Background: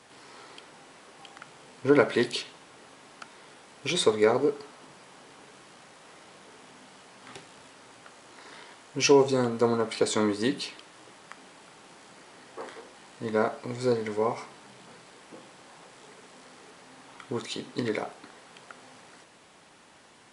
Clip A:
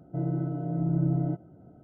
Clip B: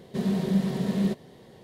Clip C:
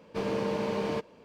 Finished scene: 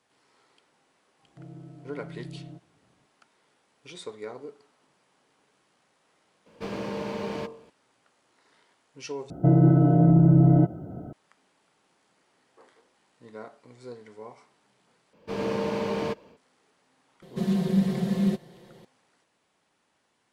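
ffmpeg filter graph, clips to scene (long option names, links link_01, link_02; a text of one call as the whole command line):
ffmpeg -i bed.wav -i cue0.wav -i cue1.wav -i cue2.wav -filter_complex "[1:a]asplit=2[link_01][link_02];[3:a]asplit=2[link_03][link_04];[0:a]volume=-16.5dB[link_05];[link_03]bandreject=frequency=45.2:width_type=h:width=4,bandreject=frequency=90.4:width_type=h:width=4,bandreject=frequency=135.6:width_type=h:width=4,bandreject=frequency=180.8:width_type=h:width=4,bandreject=frequency=226:width_type=h:width=4,bandreject=frequency=271.2:width_type=h:width=4,bandreject=frequency=316.4:width_type=h:width=4,bandreject=frequency=361.6:width_type=h:width=4,bandreject=frequency=406.8:width_type=h:width=4,bandreject=frequency=452:width_type=h:width=4,bandreject=frequency=497.2:width_type=h:width=4,bandreject=frequency=542.4:width_type=h:width=4,bandreject=frequency=587.6:width_type=h:width=4,bandreject=frequency=632.8:width_type=h:width=4,bandreject=frequency=678:width_type=h:width=4,bandreject=frequency=723.2:width_type=h:width=4,bandreject=frequency=768.4:width_type=h:width=4,bandreject=frequency=813.6:width_type=h:width=4,bandreject=frequency=858.8:width_type=h:width=4,bandreject=frequency=904:width_type=h:width=4,bandreject=frequency=949.2:width_type=h:width=4,bandreject=frequency=994.4:width_type=h:width=4,bandreject=frequency=1039.6:width_type=h:width=4,bandreject=frequency=1084.8:width_type=h:width=4,bandreject=frequency=1130:width_type=h:width=4,bandreject=frequency=1175.2:width_type=h:width=4,bandreject=frequency=1220.4:width_type=h:width=4[link_06];[link_02]alimiter=level_in=22.5dB:limit=-1dB:release=50:level=0:latency=1[link_07];[link_04]dynaudnorm=framelen=130:gausssize=3:maxgain=7dB[link_08];[2:a]aecho=1:1:5.7:0.75[link_09];[link_05]asplit=3[link_10][link_11][link_12];[link_10]atrim=end=9.304[link_13];[link_07]atrim=end=1.83,asetpts=PTS-STARTPTS,volume=-9dB[link_14];[link_11]atrim=start=11.126:end=15.134[link_15];[link_08]atrim=end=1.24,asetpts=PTS-STARTPTS,volume=-5dB[link_16];[link_12]atrim=start=16.366[link_17];[link_01]atrim=end=1.83,asetpts=PTS-STARTPTS,volume=-15.5dB,afade=type=in:duration=0.004:curve=hsin,afade=type=out:start_time=1.826:duration=0.004:curve=hsin,adelay=1230[link_18];[link_06]atrim=end=1.24,asetpts=PTS-STARTPTS,volume=-1dB,afade=type=in:duration=0.004:curve=hsin,afade=type=out:start_time=1.236:duration=0.004:curve=hsin,adelay=6460[link_19];[link_09]atrim=end=1.63,asetpts=PTS-STARTPTS,volume=-3dB,afade=type=in:duration=0.004:curve=hsin,afade=type=out:start_time=1.626:duration=0.004:curve=hsin,adelay=17220[link_20];[link_13][link_14]acrossfade=duration=0.004:curve1=hsin:curve2=hsin[link_21];[link_21][link_15]acrossfade=duration=0.004:curve1=hsin:curve2=hsin[link_22];[link_22][link_16]acrossfade=duration=0.004:curve1=hsin:curve2=hsin[link_23];[link_23][link_17]acrossfade=duration=0.004:curve1=hsin:curve2=hsin[link_24];[link_24][link_18][link_19][link_20]amix=inputs=4:normalize=0" out.wav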